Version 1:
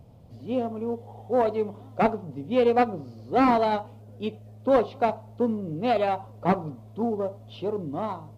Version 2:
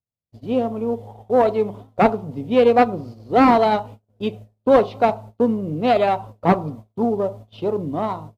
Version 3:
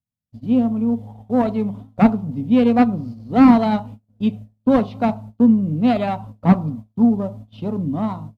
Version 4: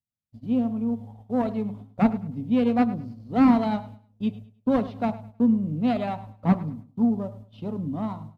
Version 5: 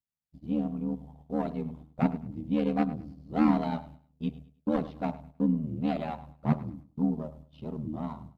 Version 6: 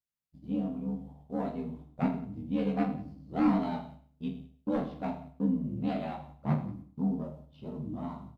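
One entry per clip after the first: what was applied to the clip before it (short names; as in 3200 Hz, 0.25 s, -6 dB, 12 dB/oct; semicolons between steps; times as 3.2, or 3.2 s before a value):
gate -42 dBFS, range -51 dB; gain +6.5 dB
resonant low shelf 300 Hz +6.5 dB, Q 3; gain -3.5 dB
feedback echo 0.104 s, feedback 27%, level -17 dB; gain -7 dB
ring modulator 39 Hz; gain -3 dB
reverse bouncing-ball echo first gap 20 ms, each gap 1.3×, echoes 5; gain -4.5 dB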